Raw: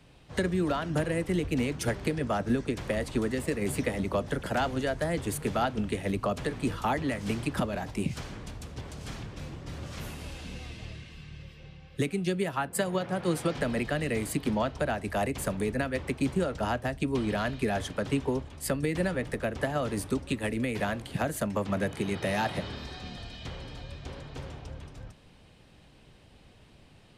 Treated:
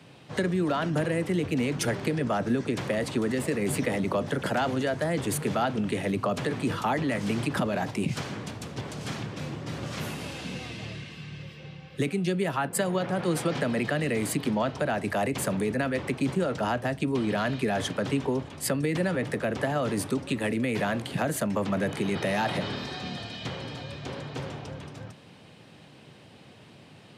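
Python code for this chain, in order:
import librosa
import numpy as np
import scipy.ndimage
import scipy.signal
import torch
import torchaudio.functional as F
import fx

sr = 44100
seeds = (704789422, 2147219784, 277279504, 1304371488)

p1 = scipy.signal.sosfilt(scipy.signal.butter(4, 110.0, 'highpass', fs=sr, output='sos'), x)
p2 = fx.high_shelf(p1, sr, hz=7300.0, db=-4.5)
p3 = fx.over_compress(p2, sr, threshold_db=-35.0, ratio=-1.0)
y = p2 + (p3 * 10.0 ** (-2.5 / 20.0))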